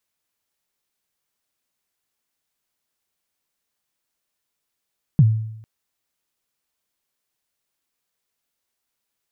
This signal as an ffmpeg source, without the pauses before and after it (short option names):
-f lavfi -i "aevalsrc='0.447*pow(10,-3*t/0.79)*sin(2*PI*(170*0.047/log(110/170)*(exp(log(110/170)*min(t,0.047)/0.047)-1)+110*max(t-0.047,0)))':d=0.45:s=44100"